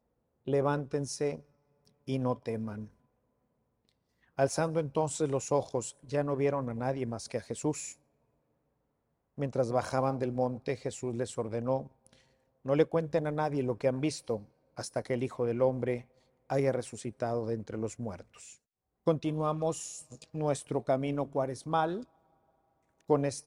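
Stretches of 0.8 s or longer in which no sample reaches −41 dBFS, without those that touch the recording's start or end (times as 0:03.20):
0:02.85–0:04.39
0:07.92–0:09.38
0:22.03–0:23.10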